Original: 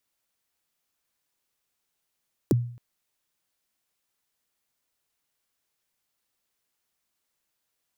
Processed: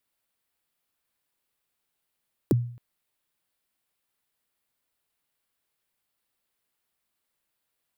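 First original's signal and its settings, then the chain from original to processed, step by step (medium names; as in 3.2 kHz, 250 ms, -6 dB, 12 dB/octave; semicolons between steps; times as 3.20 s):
kick drum length 0.27 s, from 460 Hz, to 120 Hz, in 21 ms, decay 0.52 s, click on, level -14.5 dB
peaking EQ 6.2 kHz -7 dB 0.6 oct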